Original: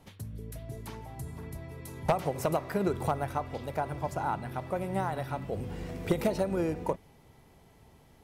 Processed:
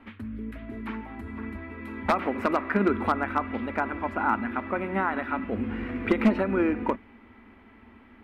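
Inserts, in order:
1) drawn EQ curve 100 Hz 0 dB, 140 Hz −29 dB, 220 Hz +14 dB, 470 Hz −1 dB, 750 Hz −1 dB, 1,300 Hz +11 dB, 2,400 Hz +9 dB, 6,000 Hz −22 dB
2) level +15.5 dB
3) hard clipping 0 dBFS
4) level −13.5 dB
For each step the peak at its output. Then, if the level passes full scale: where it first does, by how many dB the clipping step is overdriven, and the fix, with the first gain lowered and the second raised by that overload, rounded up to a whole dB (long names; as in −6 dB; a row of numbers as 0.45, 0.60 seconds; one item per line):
−6.5, +9.0, 0.0, −13.5 dBFS
step 2, 9.0 dB
step 2 +6.5 dB, step 4 −4.5 dB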